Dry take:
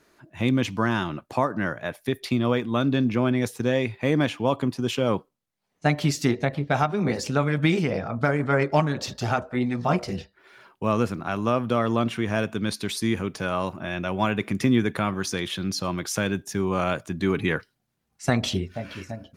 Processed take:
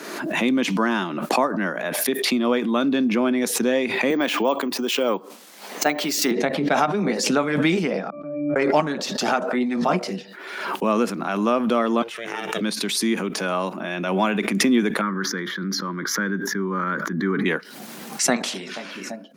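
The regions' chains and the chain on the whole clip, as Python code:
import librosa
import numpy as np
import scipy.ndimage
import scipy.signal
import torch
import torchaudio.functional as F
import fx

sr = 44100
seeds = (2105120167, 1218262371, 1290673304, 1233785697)

y = fx.chain(x, sr, fx.highpass(hz=280.0, slope=12),
    fx.resample_bad(factor=2, down='none', up='hold'), at=(4.1, 6.31))
y = fx.chain(y, sr, fx.peak_eq(hz=1400.0, db=-6.0, octaves=0.34),
    fx.level_steps(step_db=12),
    fx.octave_resonator(note='D', decay_s=0.72), at=(8.1, 8.56))
y = fx.chain(y, sr, fx.ring_mod(carrier_hz=230.0),
    fx.peak_eq(hz=360.0, db=-9.5, octaves=2.4), at=(12.02, 12.61))
y = fx.chain(y, sr, fx.high_shelf_res(hz=2600.0, db=-11.0, q=1.5),
    fx.fixed_phaser(hz=2600.0, stages=6),
    fx.sustainer(db_per_s=33.0), at=(15.01, 17.46))
y = fx.chain(y, sr, fx.lowpass(hz=7800.0, slope=12),
    fx.spectral_comp(ratio=2.0), at=(18.36, 18.91))
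y = scipy.signal.sosfilt(scipy.signal.butter(8, 180.0, 'highpass', fs=sr, output='sos'), y)
y = fx.pre_swell(y, sr, db_per_s=41.0)
y = y * 10.0 ** (2.5 / 20.0)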